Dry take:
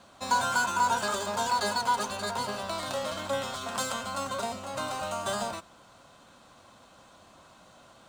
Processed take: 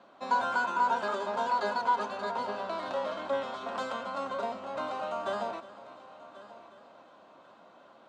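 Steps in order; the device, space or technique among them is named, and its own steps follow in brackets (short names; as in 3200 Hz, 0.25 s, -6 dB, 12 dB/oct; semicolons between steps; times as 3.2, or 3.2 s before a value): HPF 280 Hz 12 dB/oct; phone in a pocket (LPF 3900 Hz 12 dB/oct; bell 340 Hz +2 dB 1.8 oct; high shelf 2100 Hz -9 dB); multi-head echo 0.362 s, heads first and third, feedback 46%, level -18 dB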